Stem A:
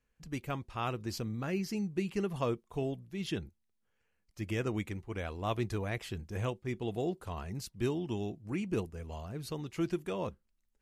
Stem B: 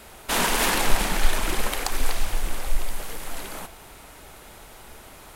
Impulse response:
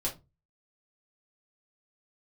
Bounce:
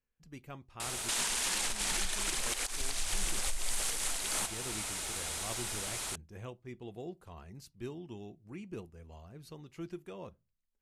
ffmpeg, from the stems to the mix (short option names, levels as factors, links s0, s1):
-filter_complex "[0:a]volume=0.299,asplit=2[s0][s1];[s1]volume=0.0891[s2];[1:a]lowpass=f=9000:w=0.5412,lowpass=f=9000:w=1.3066,acompressor=threshold=0.0708:ratio=10,crystalizer=i=7:c=0,adelay=800,volume=0.841[s3];[2:a]atrim=start_sample=2205[s4];[s2][s4]afir=irnorm=-1:irlink=0[s5];[s0][s3][s5]amix=inputs=3:normalize=0,alimiter=limit=0.0794:level=0:latency=1:release=317"